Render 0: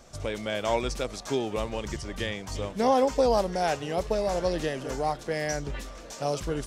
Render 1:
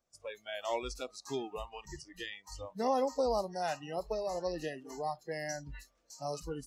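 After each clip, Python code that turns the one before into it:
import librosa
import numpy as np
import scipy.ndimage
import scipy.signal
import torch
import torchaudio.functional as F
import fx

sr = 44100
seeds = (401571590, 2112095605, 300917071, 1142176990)

y = fx.noise_reduce_blind(x, sr, reduce_db=23)
y = fx.low_shelf(y, sr, hz=220.0, db=-3.5)
y = F.gain(torch.from_numpy(y), -7.5).numpy()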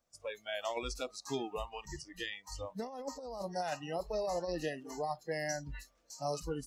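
y = fx.notch(x, sr, hz=380.0, q=12.0)
y = fx.over_compress(y, sr, threshold_db=-35.0, ratio=-0.5)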